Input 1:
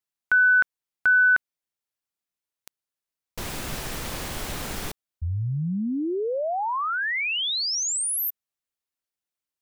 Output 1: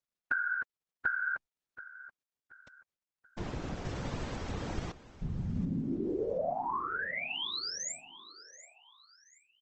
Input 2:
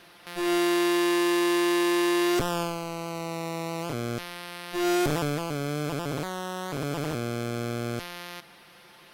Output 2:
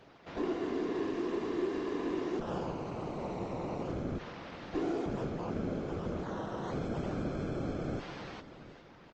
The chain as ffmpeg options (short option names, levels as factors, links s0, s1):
-filter_complex "[0:a]tiltshelf=f=1400:g=6,acompressor=threshold=0.0447:ratio=10:attack=48:release=228:knee=6:detection=peak,afftfilt=real='hypot(re,im)*cos(2*PI*random(0))':imag='hypot(re,im)*sin(2*PI*random(1))':win_size=512:overlap=0.75,asplit=2[s0][s1];[s1]aecho=0:1:730|1460|2190:0.15|0.0554|0.0205[s2];[s0][s2]amix=inputs=2:normalize=0,aresample=16000,aresample=44100" -ar 48000 -c:a libopus -b:a 20k